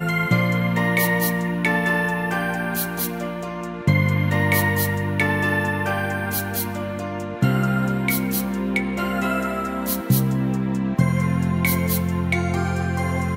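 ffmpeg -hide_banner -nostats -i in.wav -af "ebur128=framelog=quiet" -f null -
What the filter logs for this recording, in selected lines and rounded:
Integrated loudness:
  I:         -21.7 LUFS
  Threshold: -31.7 LUFS
Loudness range:
  LRA:         1.9 LU
  Threshold: -41.9 LUFS
  LRA low:   -22.9 LUFS
  LRA high:  -21.0 LUFS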